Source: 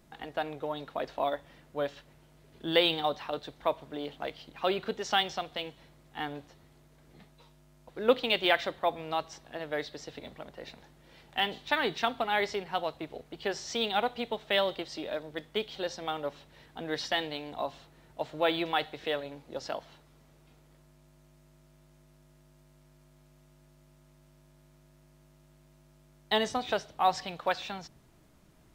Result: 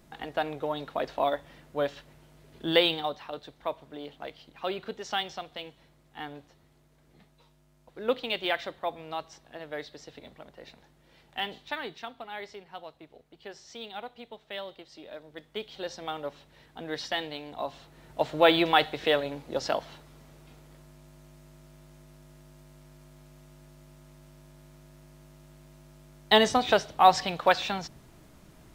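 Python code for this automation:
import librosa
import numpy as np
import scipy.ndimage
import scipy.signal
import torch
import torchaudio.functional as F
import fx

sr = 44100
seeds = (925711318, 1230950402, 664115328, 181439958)

y = fx.gain(x, sr, db=fx.line((2.71, 3.5), (3.17, -3.5), (11.57, -3.5), (12.05, -11.0), (14.82, -11.0), (15.95, -1.0), (17.55, -1.0), (18.2, 7.5)))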